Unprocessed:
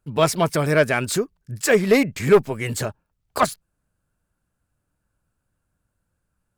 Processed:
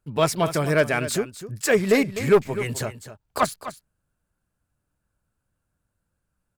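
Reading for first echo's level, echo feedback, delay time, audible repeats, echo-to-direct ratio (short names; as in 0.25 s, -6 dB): -13.0 dB, no steady repeat, 0.253 s, 1, -13.0 dB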